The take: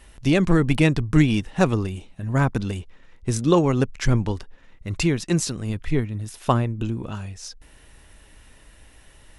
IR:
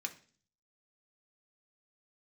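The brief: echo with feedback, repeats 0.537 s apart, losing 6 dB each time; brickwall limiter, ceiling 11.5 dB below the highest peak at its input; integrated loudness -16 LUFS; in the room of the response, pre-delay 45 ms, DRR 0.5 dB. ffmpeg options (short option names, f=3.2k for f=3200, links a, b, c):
-filter_complex "[0:a]alimiter=limit=-15.5dB:level=0:latency=1,aecho=1:1:537|1074|1611|2148|2685|3222:0.501|0.251|0.125|0.0626|0.0313|0.0157,asplit=2[a][b];[1:a]atrim=start_sample=2205,adelay=45[c];[b][c]afir=irnorm=-1:irlink=0,volume=-0.5dB[d];[a][d]amix=inputs=2:normalize=0,volume=9dB"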